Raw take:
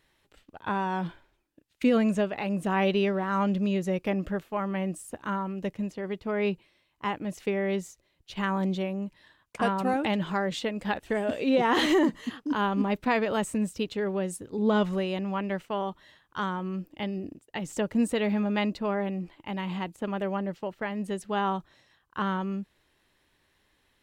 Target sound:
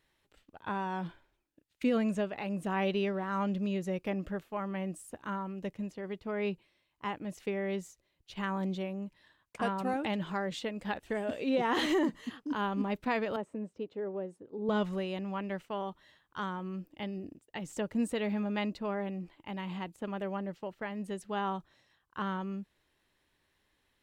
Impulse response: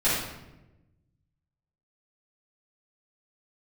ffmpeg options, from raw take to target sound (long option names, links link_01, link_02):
-filter_complex "[0:a]asettb=1/sr,asplit=3[link_01][link_02][link_03];[link_01]atrim=end=13.364[link_04];[link_02]atrim=start=13.36:end=14.69,asetpts=PTS-STARTPTS,afade=type=in:duration=0.004:curve=qsin,afade=type=out:start_time=1.326:duration=0.004:curve=qsin,bandpass=frequency=480:width_type=q:width=0.91:csg=0[link_05];[link_03]atrim=start=14.686[link_06];[link_04][link_05]acrossfade=duration=0.004:curve1=hsin:curve2=qsin[link_07];[link_07][link_06]acrossfade=duration=0.004:curve1=qsin:curve2=hsin,volume=-6dB"